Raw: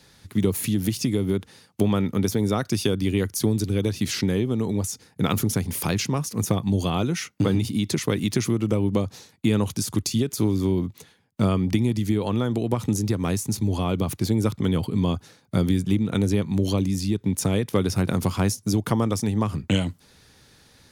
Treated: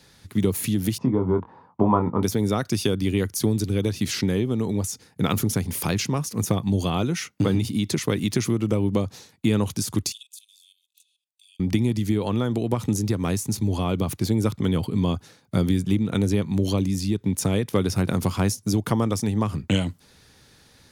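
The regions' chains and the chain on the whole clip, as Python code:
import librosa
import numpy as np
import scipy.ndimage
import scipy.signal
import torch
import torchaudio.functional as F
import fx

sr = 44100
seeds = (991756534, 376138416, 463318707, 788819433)

y = fx.chain(x, sr, fx.lowpass_res(hz=980.0, q=6.6),
    fx.doubler(ms=23.0, db=-6), at=(0.98, 2.23))
y = fx.chain(y, sr, fx.cheby_ripple_highpass(hz=2500.0, ripple_db=9),
    fx.level_steps(step_db=14), at=(10.12, 11.6))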